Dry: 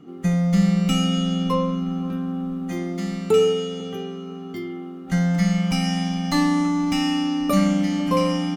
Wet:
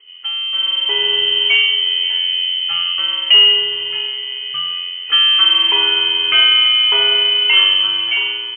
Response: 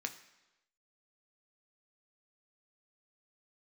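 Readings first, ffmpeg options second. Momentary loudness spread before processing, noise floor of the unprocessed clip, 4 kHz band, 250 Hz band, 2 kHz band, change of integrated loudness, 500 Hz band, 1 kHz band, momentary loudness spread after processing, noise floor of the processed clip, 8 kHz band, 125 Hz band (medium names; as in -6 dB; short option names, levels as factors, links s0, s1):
13 LU, -36 dBFS, +23.5 dB, under -20 dB, +16.0 dB, +10.0 dB, -7.0 dB, 0.0 dB, 11 LU, -27 dBFS, under -40 dB, under -25 dB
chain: -af "lowshelf=f=130:g=-7,asoftclip=type=tanh:threshold=0.237,dynaudnorm=f=280:g=7:m=3.76,lowpass=f=2800:t=q:w=0.5098,lowpass=f=2800:t=q:w=0.6013,lowpass=f=2800:t=q:w=0.9,lowpass=f=2800:t=q:w=2.563,afreqshift=-3300"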